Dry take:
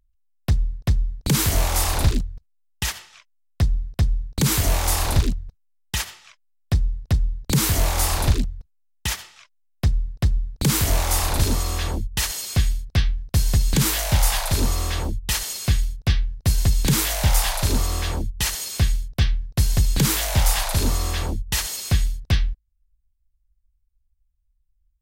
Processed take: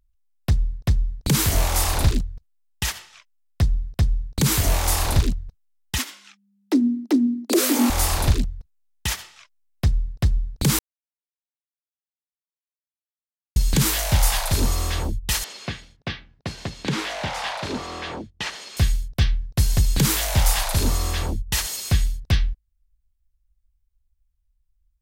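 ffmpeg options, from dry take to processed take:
-filter_complex "[0:a]asettb=1/sr,asplit=3[a][b][c];[a]atrim=end=5.984[d];[b]atrim=start=5.98:end=7.9,asetpts=PTS-STARTPTS,afade=t=in:d=0.004:c=qsin,afade=t=out:st=1.916:d=0.004:c=qsin,afreqshift=200[e];[c]atrim=start=7.896[f];[d][e]acrossfade=d=0.004:c1=hsin:c2=qsin[g];[g][f]acrossfade=d=0.004:c1=qsin:c2=hsin,asettb=1/sr,asplit=3[h][i][j];[h]atrim=end=15.444[k];[i]atrim=start=15.44:end=18.77,asetpts=PTS-STARTPTS,afade=t=in:d=0.004:c=qsin,afade=t=out:st=3.326:d=0.004:c=qsin,highpass=210,lowpass=3.4k[l];[j]atrim=start=18.766[m];[k][l]acrossfade=d=0.004:c1=hsin:c2=qsin[n];[n][m]acrossfade=d=0.004:c1=qsin:c2=hsin,asplit=3[o][p][q];[o]atrim=end=10.79,asetpts=PTS-STARTPTS,afade=t=out:st=10.786:d=0.004:c=hsin[r];[p]atrim=start=10.79:end=13.56,asetpts=PTS-STARTPTS,volume=0[s];[q]atrim=start=13.56,asetpts=PTS-STARTPTS,afade=t=in:d=0.004:c=hsin[t];[r][s][t]concat=n=3:v=0:a=1"

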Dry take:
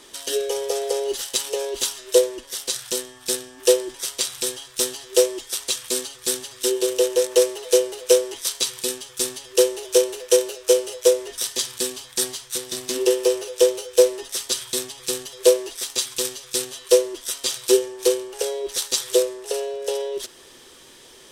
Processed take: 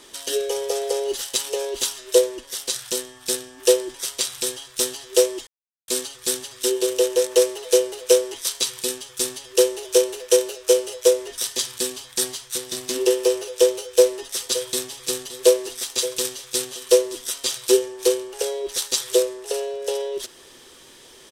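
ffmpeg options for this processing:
-filter_complex "[0:a]asplit=3[a][b][c];[a]afade=t=out:st=14.39:d=0.02[d];[b]aecho=1:1:570:0.2,afade=t=in:st=14.39:d=0.02,afade=t=out:st=17.41:d=0.02[e];[c]afade=t=in:st=17.41:d=0.02[f];[d][e][f]amix=inputs=3:normalize=0,asplit=3[g][h][i];[g]atrim=end=5.47,asetpts=PTS-STARTPTS,afade=t=out:st=5.466:d=0.004:c=hsin[j];[h]atrim=start=5.47:end=5.88,asetpts=PTS-STARTPTS,volume=0[k];[i]atrim=start=5.88,asetpts=PTS-STARTPTS,afade=t=in:d=0.004:c=hsin[l];[j][k][l]concat=n=3:v=0:a=1"

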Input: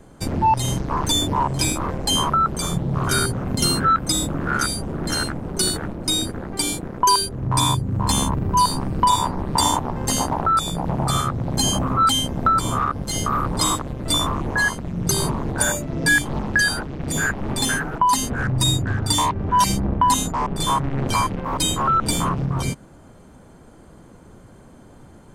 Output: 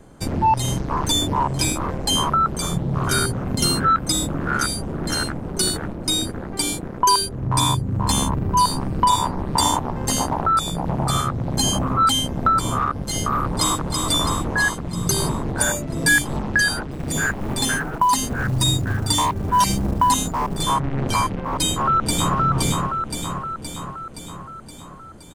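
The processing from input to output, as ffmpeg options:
-filter_complex "[0:a]asplit=2[a][b];[b]afade=t=in:st=13.45:d=0.01,afade=t=out:st=13.98:d=0.01,aecho=0:1:330|660|990|1320|1650|1980|2310|2640|2970|3300:0.595662|0.38718|0.251667|0.163584|0.106329|0.0691141|0.0449242|0.0292007|0.0189805|0.0123373[c];[a][c]amix=inputs=2:normalize=0,asettb=1/sr,asplit=3[d][e][f];[d]atrim=end=15.874[g];[e]atrim=start=15.87:end=16.37,asetpts=PTS-STARTPTS,afade=t=in:d=0.004:c=qsin,afade=t=out:st=0.496:d=0.004:c=qsin,highshelf=f=6.5k:g=6[h];[f]atrim=start=16.366[i];[g][h]acrossfade=d=0.004:c1=hsin:c2=qsin[j];[j][i]acrossfade=d=0.004:c1=qsin:c2=hsin,asettb=1/sr,asplit=3[k][l][m];[k]atrim=end=16.914[n];[l]atrim=start=16.91:end=20.63,asetpts=PTS-STARTPTS,afade=t=in:d=0.004:c=qsin,afade=t=out:st=3.716:d=0.004:c=qsin,acrusher=bits=7:mode=log:mix=0:aa=0.000001[o];[m]atrim=start=20.626[p];[n][o]acrossfade=d=0.004:c1=hsin:c2=qsin[q];[q][p]acrossfade=d=0.004:c1=qsin:c2=hsin,asplit=2[r][s];[s]afade=t=in:st=21.66:d=0.01,afade=t=out:st=22.37:d=0.01,aecho=0:1:520|1040|1560|2080|2600|3120|3640|4160|4680:0.794328|0.476597|0.285958|0.171575|0.102945|0.061767|0.0370602|0.0222361|0.0133417[t];[r][t]amix=inputs=2:normalize=0"

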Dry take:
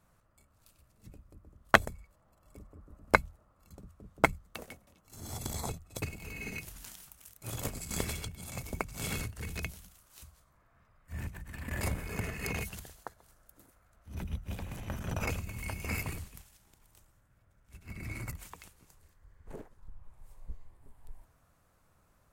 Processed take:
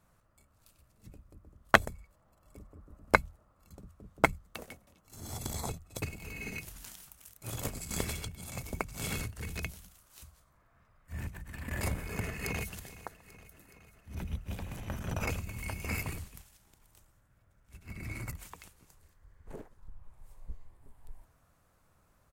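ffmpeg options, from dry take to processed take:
-filter_complex "[0:a]asplit=2[a][b];[b]afade=t=in:st=12.25:d=0.01,afade=t=out:st=12.74:d=0.01,aecho=0:1:420|840|1260|1680|2100|2520|2940|3360:0.141254|0.0988776|0.0692143|0.04845|0.033915|0.0237405|0.0166184|0.0116329[c];[a][c]amix=inputs=2:normalize=0"

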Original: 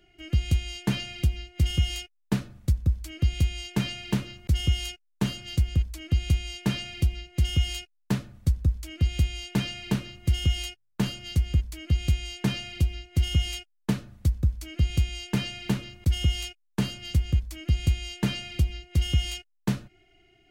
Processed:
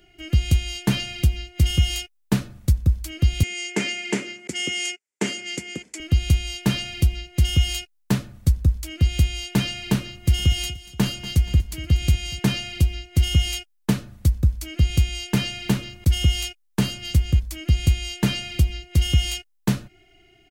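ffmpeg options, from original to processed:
-filter_complex "[0:a]asettb=1/sr,asplit=3[a][b][c];[a]atrim=end=3.434[d];[b]atrim=start=3.43:end=6,asetpts=PTS-STARTPTS,afade=t=in:d=0.004:c=qsin,afade=t=out:st=2.566:d=0.004:c=qsin,highpass=f=220:w=0.5412,highpass=f=220:w=1.3066,equalizer=f=400:t=q:w=4:g=7,equalizer=f=1.1k:t=q:w=4:g=-5,equalizer=f=2.1k:t=q:w=4:g=9,equalizer=f=3.9k:t=q:w=4:g=-8,equalizer=f=7.3k:t=q:w=4:g=7,lowpass=f=9.2k:w=0.5412,lowpass=f=9.2k:w=1.3066[e];[c]atrim=start=5.996[f];[d][e]acrossfade=d=0.004:c1=hsin:c2=qsin[g];[g][f]acrossfade=d=0.004:c1=qsin:c2=hsin,asplit=3[h][i][j];[h]afade=t=out:st=10.27:d=0.02[k];[i]aecho=1:1:239|478|717|956:0.141|0.0593|0.0249|0.0105,afade=t=in:st=10.27:d=0.02,afade=t=out:st=12.38:d=0.02[l];[j]afade=t=in:st=12.38:d=0.02[m];[k][l][m]amix=inputs=3:normalize=0,highshelf=f=6.5k:g=5.5,volume=5dB"

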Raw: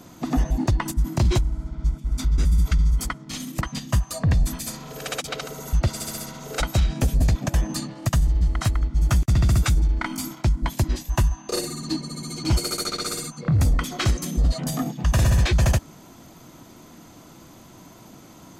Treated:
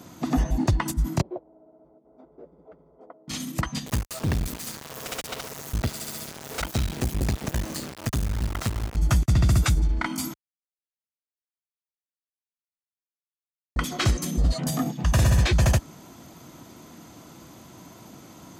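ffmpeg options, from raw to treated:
-filter_complex "[0:a]asettb=1/sr,asplit=3[a][b][c];[a]atrim=end=1.214[d];[b]atrim=start=1.21:end=3.28,asetpts=PTS-STARTPTS,afade=t=in:d=0.004:c=qsin,afade=t=out:st=2.066:d=0.004:c=qsin,asuperpass=centerf=530:order=4:qfactor=1.9[e];[c]atrim=start=3.276[f];[d][e]acrossfade=d=0.004:c1=hsin:c2=qsin[g];[g][f]acrossfade=d=0.004:c1=qsin:c2=hsin,asettb=1/sr,asplit=3[h][i][j];[h]atrim=end=3.864[k];[i]atrim=start=3.86:end=8.97,asetpts=PTS-STARTPTS,afade=t=in:d=0.004:c=qsin,afade=t=out:st=5.106:d=0.004:c=qsin,acrusher=bits=3:dc=4:mix=0:aa=0.000001[l];[j]atrim=start=8.966[m];[k][l]acrossfade=d=0.004:c1=hsin:c2=qsin[n];[n][m]acrossfade=d=0.004:c1=qsin:c2=hsin,asplit=3[o][p][q];[o]atrim=end=10.34,asetpts=PTS-STARTPTS,afade=t=out:st=10.336:d=0.004:c=hsin[r];[p]atrim=start=10.34:end=13.76,asetpts=PTS-STARTPTS,volume=0[s];[q]atrim=start=13.76,asetpts=PTS-STARTPTS,afade=t=in:d=0.004:c=hsin[t];[r][s][t]concat=n=3:v=0:a=1,highpass=49"

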